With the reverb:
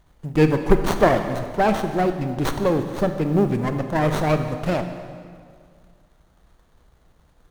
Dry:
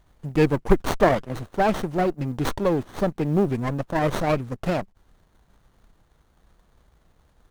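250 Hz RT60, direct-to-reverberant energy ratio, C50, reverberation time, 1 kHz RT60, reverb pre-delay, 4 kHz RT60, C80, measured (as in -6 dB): 2.2 s, 7.0 dB, 8.0 dB, 2.1 s, 2.0 s, 20 ms, 1.7 s, 9.5 dB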